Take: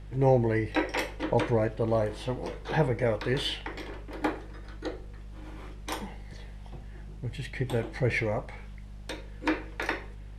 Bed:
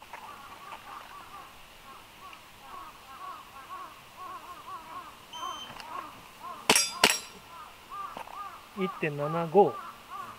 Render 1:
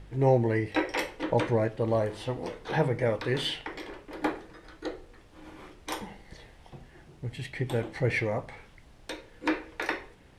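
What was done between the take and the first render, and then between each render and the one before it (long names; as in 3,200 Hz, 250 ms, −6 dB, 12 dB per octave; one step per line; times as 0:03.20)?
hum removal 50 Hz, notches 5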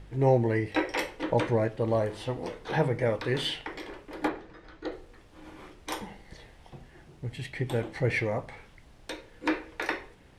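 0:04.28–0:04.92: high-frequency loss of the air 99 metres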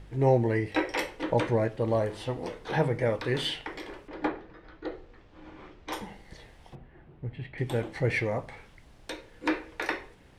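0:04.08–0:05.93: high-frequency loss of the air 140 metres
0:06.75–0:07.58: high-frequency loss of the air 480 metres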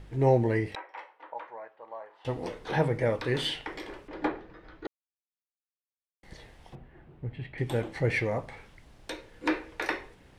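0:00.75–0:02.25: four-pole ladder band-pass 1,100 Hz, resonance 40%
0:04.87–0:06.23: silence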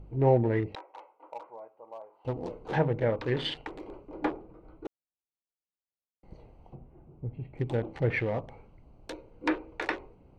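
adaptive Wiener filter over 25 samples
treble cut that deepens with the level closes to 2,500 Hz, closed at −23 dBFS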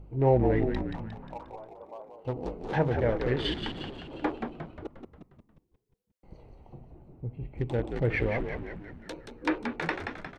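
echo with shifted repeats 178 ms, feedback 56%, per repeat −74 Hz, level −6 dB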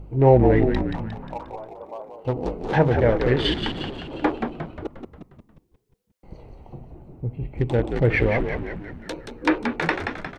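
level +8 dB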